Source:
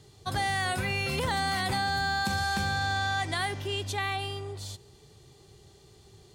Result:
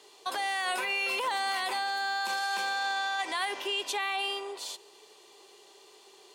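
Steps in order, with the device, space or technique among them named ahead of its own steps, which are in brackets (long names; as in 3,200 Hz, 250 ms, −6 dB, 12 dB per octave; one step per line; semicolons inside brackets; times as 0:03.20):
laptop speaker (high-pass filter 380 Hz 24 dB per octave; parametric band 1,000 Hz +10.5 dB 0.22 octaves; parametric band 2,700 Hz +6.5 dB 0.45 octaves; brickwall limiter −26 dBFS, peak gain reduction 10.5 dB)
level +3 dB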